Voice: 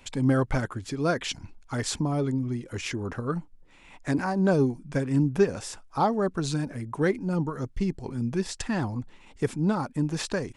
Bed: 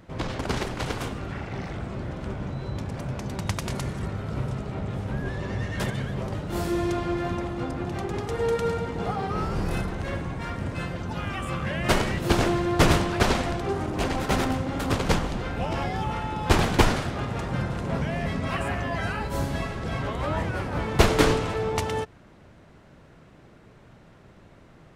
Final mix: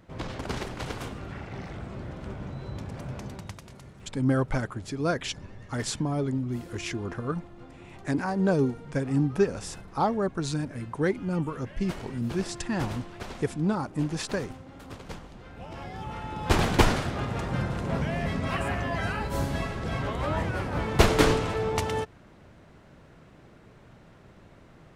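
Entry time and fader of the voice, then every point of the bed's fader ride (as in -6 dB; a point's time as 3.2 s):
4.00 s, -1.5 dB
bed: 3.24 s -5 dB
3.68 s -17.5 dB
15.31 s -17.5 dB
16.68 s -1 dB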